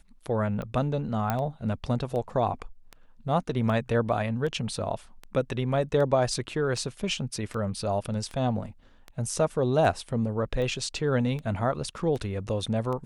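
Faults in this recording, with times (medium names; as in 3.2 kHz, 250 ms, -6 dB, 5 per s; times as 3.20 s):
tick 78 rpm -24 dBFS
1.30 s: pop -13 dBFS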